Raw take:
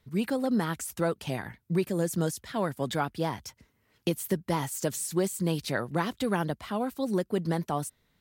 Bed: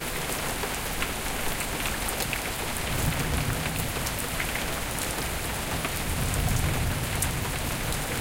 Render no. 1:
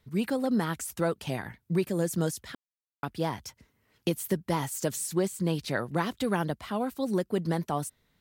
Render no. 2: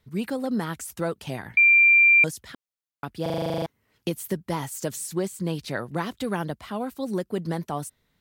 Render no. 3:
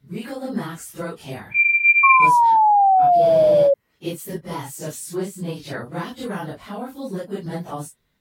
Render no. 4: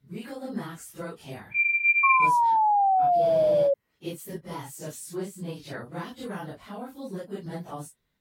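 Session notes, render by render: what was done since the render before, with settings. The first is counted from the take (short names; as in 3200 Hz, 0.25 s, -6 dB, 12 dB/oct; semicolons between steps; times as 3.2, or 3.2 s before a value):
2.55–3.03 mute; 5.13–5.71 high shelf 6500 Hz -6 dB
1.57–2.24 bleep 2370 Hz -12.5 dBFS; 3.22 stutter in place 0.04 s, 11 plays
phase scrambler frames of 0.1 s; 2.03–3.74 painted sound fall 550–1100 Hz -14 dBFS
gain -7 dB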